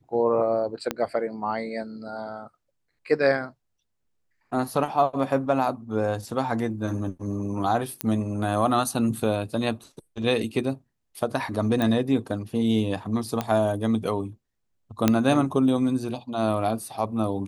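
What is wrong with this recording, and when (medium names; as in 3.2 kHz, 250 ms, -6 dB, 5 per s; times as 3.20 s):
0.91 s: pop -11 dBFS
8.01 s: pop -8 dBFS
11.82 s: pop -13 dBFS
13.41 s: pop -12 dBFS
15.08 s: pop -5 dBFS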